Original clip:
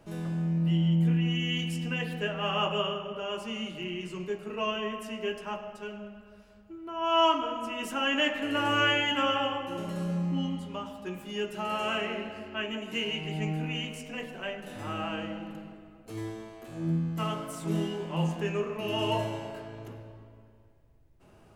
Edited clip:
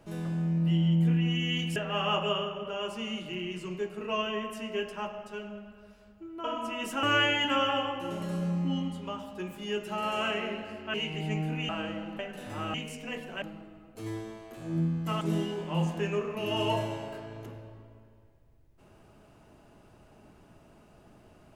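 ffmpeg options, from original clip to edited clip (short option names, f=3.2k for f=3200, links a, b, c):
-filter_complex "[0:a]asplit=10[a][b][c][d][e][f][g][h][i][j];[a]atrim=end=1.762[k];[b]atrim=start=2.248:end=6.932[l];[c]atrim=start=7.428:end=8.022[m];[d]atrim=start=8.698:end=12.612[n];[e]atrim=start=13.048:end=13.802[o];[f]atrim=start=15.028:end=15.532[p];[g]atrim=start=14.478:end=15.032[q];[h]atrim=start=13.798:end=14.482[r];[i]atrim=start=15.528:end=17.322[s];[j]atrim=start=17.628[t];[k][l]acrossfade=d=0.004:c1=hsin:c2=hsin[u];[u][m]acrossfade=d=0.004:c1=hsin:c2=hsin[v];[v][n]acrossfade=d=0.004:c1=hsin:c2=hsin[w];[w][o]acrossfade=d=0.004:c1=hsin:c2=hsin[x];[x][p]acrossfade=d=0.004:c1=hsin:c2=hsin[y];[y][q]acrossfade=d=0.004:c1=hsin:c2=hsin[z];[z][r]acrossfade=d=0.004:c1=hsin:c2=hsin[aa];[aa][s]acrossfade=d=0.004:c1=hsin:c2=hsin[ab];[ab][t]acrossfade=d=0.004:c1=hsin:c2=hsin"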